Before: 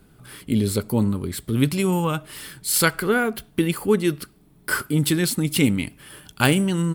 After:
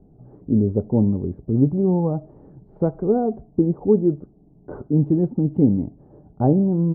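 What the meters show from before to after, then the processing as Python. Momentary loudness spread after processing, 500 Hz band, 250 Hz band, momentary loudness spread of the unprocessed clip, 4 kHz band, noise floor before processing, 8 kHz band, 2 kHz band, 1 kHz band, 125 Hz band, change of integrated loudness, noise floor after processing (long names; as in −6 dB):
7 LU, +2.5 dB, +3.0 dB, 11 LU, below −40 dB, −54 dBFS, below −40 dB, below −30 dB, −4.0 dB, +2.5 dB, +1.5 dB, −53 dBFS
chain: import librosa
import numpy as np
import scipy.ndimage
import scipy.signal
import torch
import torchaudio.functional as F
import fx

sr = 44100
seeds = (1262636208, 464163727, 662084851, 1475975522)

y = scipy.signal.sosfilt(scipy.signal.cheby1(4, 1.0, 760.0, 'lowpass', fs=sr, output='sos'), x)
y = F.gain(torch.from_numpy(y), 3.0).numpy()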